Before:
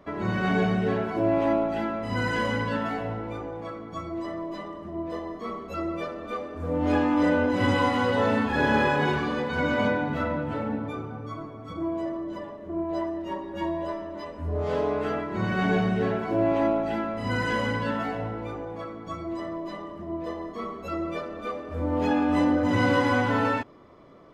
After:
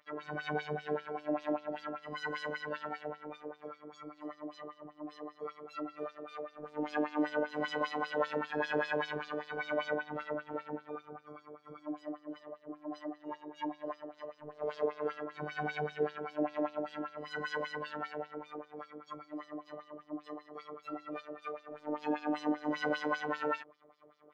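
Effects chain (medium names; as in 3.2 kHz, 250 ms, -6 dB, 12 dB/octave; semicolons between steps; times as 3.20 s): LFO band-pass sine 5.1 Hz 390–5300 Hz; robot voice 150 Hz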